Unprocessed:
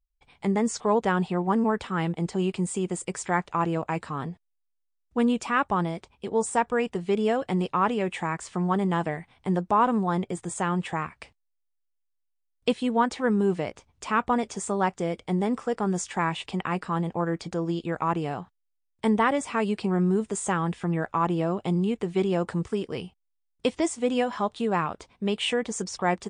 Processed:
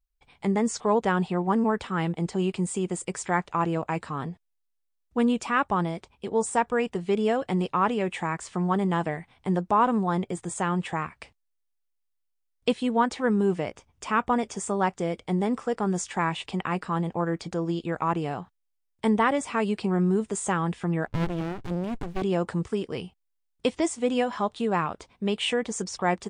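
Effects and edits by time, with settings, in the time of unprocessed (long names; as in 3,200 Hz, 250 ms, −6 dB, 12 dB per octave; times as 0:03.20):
0:13.52–0:14.82: notch filter 4,100 Hz, Q 9.6
0:21.07–0:22.22: windowed peak hold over 65 samples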